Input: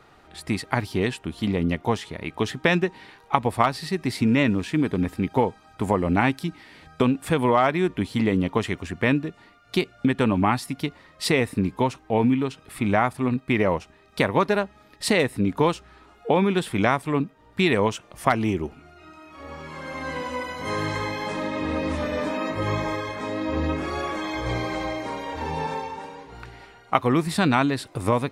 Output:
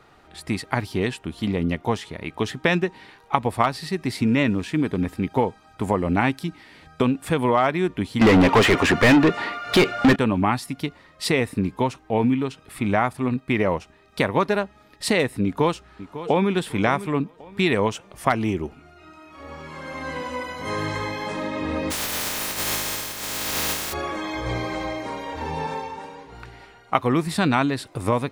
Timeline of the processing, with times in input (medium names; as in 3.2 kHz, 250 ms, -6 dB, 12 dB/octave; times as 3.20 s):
8.21–10.16 s: overdrive pedal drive 34 dB, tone 2.2 kHz, clips at -6.5 dBFS
15.44–16.52 s: echo throw 550 ms, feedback 30%, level -13.5 dB
21.90–23.92 s: spectral contrast reduction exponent 0.13